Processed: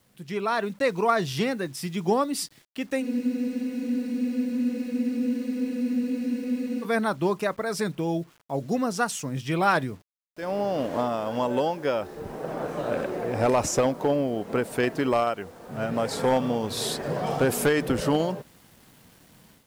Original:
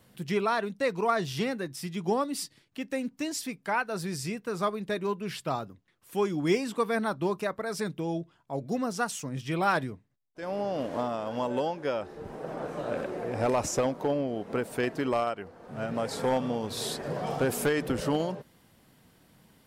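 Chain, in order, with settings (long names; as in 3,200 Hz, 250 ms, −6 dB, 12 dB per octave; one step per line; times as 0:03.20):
bit-depth reduction 10 bits, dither none
automatic gain control gain up to 10 dB
frozen spectrum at 0:03.05, 3.79 s
level −5.5 dB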